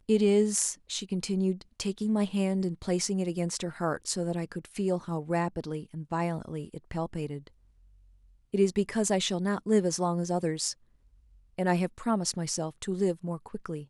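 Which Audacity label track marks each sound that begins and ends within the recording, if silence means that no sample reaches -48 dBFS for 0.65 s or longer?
8.540000	10.730000	sound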